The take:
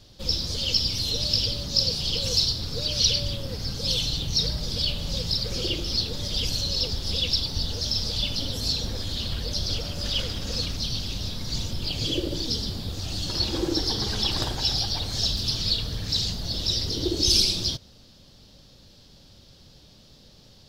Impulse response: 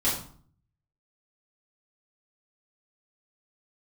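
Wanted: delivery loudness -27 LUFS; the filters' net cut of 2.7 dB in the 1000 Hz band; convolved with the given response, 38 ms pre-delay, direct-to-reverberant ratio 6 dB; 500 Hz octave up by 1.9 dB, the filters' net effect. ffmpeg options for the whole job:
-filter_complex "[0:a]equalizer=f=500:t=o:g=3.5,equalizer=f=1k:t=o:g=-5,asplit=2[a][b];[1:a]atrim=start_sample=2205,adelay=38[c];[b][c]afir=irnorm=-1:irlink=0,volume=-16.5dB[d];[a][d]amix=inputs=2:normalize=0,volume=-3dB"

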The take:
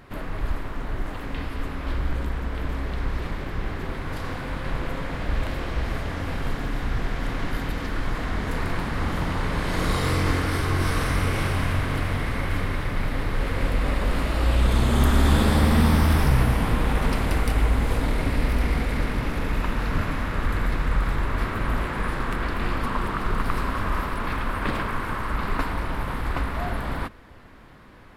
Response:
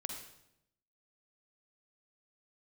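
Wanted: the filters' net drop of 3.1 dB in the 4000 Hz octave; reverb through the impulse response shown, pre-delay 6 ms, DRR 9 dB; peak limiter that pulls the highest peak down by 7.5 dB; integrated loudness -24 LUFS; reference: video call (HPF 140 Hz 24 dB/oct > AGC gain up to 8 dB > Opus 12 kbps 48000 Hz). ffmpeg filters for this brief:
-filter_complex "[0:a]equalizer=f=4k:t=o:g=-4,alimiter=limit=-14dB:level=0:latency=1,asplit=2[a][b];[1:a]atrim=start_sample=2205,adelay=6[c];[b][c]afir=irnorm=-1:irlink=0,volume=-8.5dB[d];[a][d]amix=inputs=2:normalize=0,highpass=f=140:w=0.5412,highpass=f=140:w=1.3066,dynaudnorm=m=8dB,volume=0.5dB" -ar 48000 -c:a libopus -b:a 12k

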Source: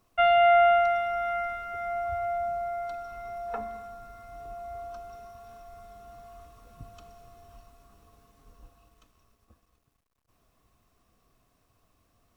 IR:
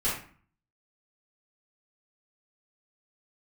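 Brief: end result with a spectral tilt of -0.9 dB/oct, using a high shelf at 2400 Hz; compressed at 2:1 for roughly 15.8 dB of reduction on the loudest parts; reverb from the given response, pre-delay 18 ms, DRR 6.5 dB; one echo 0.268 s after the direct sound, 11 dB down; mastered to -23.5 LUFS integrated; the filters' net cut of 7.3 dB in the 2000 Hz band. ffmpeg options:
-filter_complex "[0:a]equalizer=f=2k:t=o:g=-5,highshelf=f=2.4k:g=-8,acompressor=threshold=-49dB:ratio=2,aecho=1:1:268:0.282,asplit=2[a][b];[1:a]atrim=start_sample=2205,adelay=18[c];[b][c]afir=irnorm=-1:irlink=0,volume=-15.5dB[d];[a][d]amix=inputs=2:normalize=0,volume=18dB"

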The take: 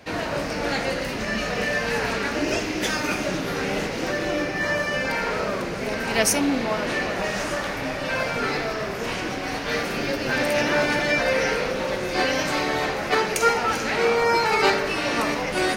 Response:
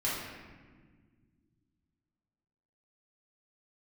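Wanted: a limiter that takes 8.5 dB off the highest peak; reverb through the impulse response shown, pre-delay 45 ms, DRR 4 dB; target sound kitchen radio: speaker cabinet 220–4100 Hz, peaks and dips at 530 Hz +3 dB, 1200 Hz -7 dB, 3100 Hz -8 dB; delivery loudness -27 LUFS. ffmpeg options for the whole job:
-filter_complex "[0:a]alimiter=limit=-13.5dB:level=0:latency=1,asplit=2[a][b];[1:a]atrim=start_sample=2205,adelay=45[c];[b][c]afir=irnorm=-1:irlink=0,volume=-11.5dB[d];[a][d]amix=inputs=2:normalize=0,highpass=220,equalizer=f=530:t=q:w=4:g=3,equalizer=f=1.2k:t=q:w=4:g=-7,equalizer=f=3.1k:t=q:w=4:g=-8,lowpass=f=4.1k:w=0.5412,lowpass=f=4.1k:w=1.3066,volume=-3dB"

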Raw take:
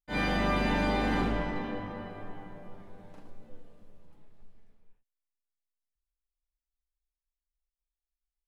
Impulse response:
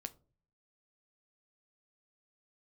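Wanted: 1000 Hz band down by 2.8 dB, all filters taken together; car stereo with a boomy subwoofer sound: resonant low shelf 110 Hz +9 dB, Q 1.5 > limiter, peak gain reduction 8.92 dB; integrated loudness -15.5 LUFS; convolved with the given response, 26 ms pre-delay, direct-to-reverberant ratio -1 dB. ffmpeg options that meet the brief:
-filter_complex "[0:a]equalizer=f=1k:t=o:g=-3.5,asplit=2[a][b];[1:a]atrim=start_sample=2205,adelay=26[c];[b][c]afir=irnorm=-1:irlink=0,volume=4.5dB[d];[a][d]amix=inputs=2:normalize=0,lowshelf=f=110:t=q:w=1.5:g=9,volume=16.5dB,alimiter=limit=-3dB:level=0:latency=1"

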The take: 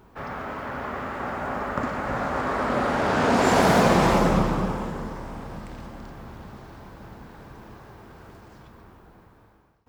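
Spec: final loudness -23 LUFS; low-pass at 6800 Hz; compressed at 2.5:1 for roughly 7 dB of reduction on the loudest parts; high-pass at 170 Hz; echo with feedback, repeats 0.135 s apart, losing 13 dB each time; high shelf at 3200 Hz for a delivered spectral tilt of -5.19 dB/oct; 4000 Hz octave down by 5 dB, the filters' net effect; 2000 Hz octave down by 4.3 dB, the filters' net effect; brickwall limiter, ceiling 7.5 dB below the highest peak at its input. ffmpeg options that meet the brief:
-af "highpass=170,lowpass=6.8k,equalizer=f=2k:t=o:g=-5.5,highshelf=f=3.2k:g=3,equalizer=f=4k:t=o:g=-6.5,acompressor=threshold=-26dB:ratio=2.5,alimiter=limit=-21dB:level=0:latency=1,aecho=1:1:135|270|405:0.224|0.0493|0.0108,volume=9dB"

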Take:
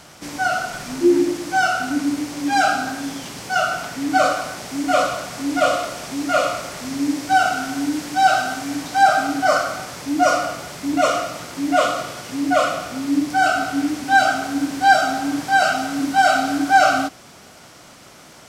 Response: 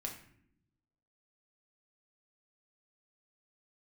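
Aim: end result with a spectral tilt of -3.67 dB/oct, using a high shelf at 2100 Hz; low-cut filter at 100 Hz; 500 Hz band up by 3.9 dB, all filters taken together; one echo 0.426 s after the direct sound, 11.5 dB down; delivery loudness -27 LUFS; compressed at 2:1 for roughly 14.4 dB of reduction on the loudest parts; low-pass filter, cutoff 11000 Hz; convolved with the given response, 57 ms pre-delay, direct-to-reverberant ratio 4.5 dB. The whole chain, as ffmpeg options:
-filter_complex "[0:a]highpass=100,lowpass=11k,equalizer=f=500:t=o:g=6.5,highshelf=f=2.1k:g=-8,acompressor=threshold=-36dB:ratio=2,aecho=1:1:426:0.266,asplit=2[a][b];[1:a]atrim=start_sample=2205,adelay=57[c];[b][c]afir=irnorm=-1:irlink=0,volume=-3.5dB[d];[a][d]amix=inputs=2:normalize=0,volume=2dB"

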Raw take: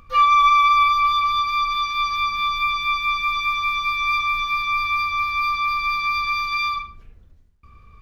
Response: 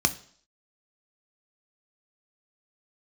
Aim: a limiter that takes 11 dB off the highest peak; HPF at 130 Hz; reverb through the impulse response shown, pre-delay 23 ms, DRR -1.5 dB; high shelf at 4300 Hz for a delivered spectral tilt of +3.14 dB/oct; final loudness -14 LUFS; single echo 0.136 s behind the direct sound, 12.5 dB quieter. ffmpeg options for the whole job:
-filter_complex "[0:a]highpass=130,highshelf=f=4.3k:g=-4,alimiter=limit=-19.5dB:level=0:latency=1,aecho=1:1:136:0.237,asplit=2[a][b];[1:a]atrim=start_sample=2205,adelay=23[c];[b][c]afir=irnorm=-1:irlink=0,volume=-9.5dB[d];[a][d]amix=inputs=2:normalize=0,volume=5.5dB"

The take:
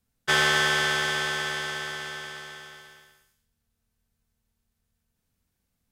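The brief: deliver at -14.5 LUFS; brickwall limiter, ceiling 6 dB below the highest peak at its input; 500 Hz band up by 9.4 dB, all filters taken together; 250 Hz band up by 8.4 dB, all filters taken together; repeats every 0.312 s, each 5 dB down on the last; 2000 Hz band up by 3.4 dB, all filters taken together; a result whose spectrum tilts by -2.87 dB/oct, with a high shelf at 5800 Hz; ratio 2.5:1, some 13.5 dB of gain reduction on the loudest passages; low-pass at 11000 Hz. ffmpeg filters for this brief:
-af "lowpass=11k,equalizer=f=250:t=o:g=9,equalizer=f=500:t=o:g=9,equalizer=f=2k:t=o:g=4,highshelf=f=5.8k:g=-4.5,acompressor=threshold=-35dB:ratio=2.5,alimiter=level_in=0.5dB:limit=-24dB:level=0:latency=1,volume=-0.5dB,aecho=1:1:312|624|936|1248|1560|1872|2184:0.562|0.315|0.176|0.0988|0.0553|0.031|0.0173,volume=21dB"

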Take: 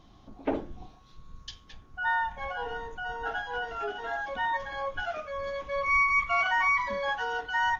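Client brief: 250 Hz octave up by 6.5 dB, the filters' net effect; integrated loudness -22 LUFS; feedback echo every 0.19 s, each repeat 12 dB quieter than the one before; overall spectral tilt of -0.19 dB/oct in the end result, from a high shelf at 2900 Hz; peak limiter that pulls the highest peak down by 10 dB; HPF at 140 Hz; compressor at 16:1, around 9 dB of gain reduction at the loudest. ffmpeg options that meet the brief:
-af "highpass=140,equalizer=f=250:t=o:g=8,highshelf=f=2.9k:g=7.5,acompressor=threshold=-27dB:ratio=16,alimiter=level_in=3.5dB:limit=-24dB:level=0:latency=1,volume=-3.5dB,aecho=1:1:190|380|570:0.251|0.0628|0.0157,volume=13dB"

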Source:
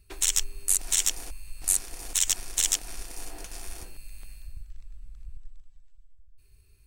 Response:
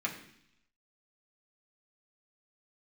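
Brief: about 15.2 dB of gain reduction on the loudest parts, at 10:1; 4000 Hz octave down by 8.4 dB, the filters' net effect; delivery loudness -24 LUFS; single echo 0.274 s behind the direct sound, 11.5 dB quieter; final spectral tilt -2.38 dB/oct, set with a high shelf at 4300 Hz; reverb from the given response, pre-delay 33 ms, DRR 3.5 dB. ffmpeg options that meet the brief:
-filter_complex "[0:a]equalizer=f=4k:t=o:g=-8.5,highshelf=f=4.3k:g=-5.5,acompressor=threshold=-40dB:ratio=10,aecho=1:1:274:0.266,asplit=2[a][b];[1:a]atrim=start_sample=2205,adelay=33[c];[b][c]afir=irnorm=-1:irlink=0,volume=-8.5dB[d];[a][d]amix=inputs=2:normalize=0,volume=22.5dB"

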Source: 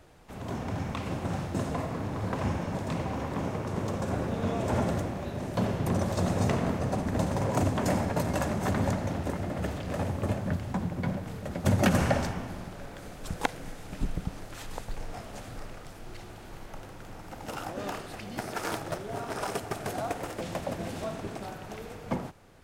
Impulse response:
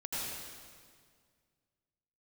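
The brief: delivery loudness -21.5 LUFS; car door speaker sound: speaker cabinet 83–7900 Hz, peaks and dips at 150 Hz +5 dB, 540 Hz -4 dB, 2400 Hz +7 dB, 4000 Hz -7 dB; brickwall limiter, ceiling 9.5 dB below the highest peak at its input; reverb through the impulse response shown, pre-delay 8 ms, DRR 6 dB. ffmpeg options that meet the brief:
-filter_complex "[0:a]alimiter=limit=-20dB:level=0:latency=1,asplit=2[a][b];[1:a]atrim=start_sample=2205,adelay=8[c];[b][c]afir=irnorm=-1:irlink=0,volume=-9.5dB[d];[a][d]amix=inputs=2:normalize=0,highpass=83,equalizer=f=150:t=q:w=4:g=5,equalizer=f=540:t=q:w=4:g=-4,equalizer=f=2.4k:t=q:w=4:g=7,equalizer=f=4k:t=q:w=4:g=-7,lowpass=f=7.9k:w=0.5412,lowpass=f=7.9k:w=1.3066,volume=10.5dB"

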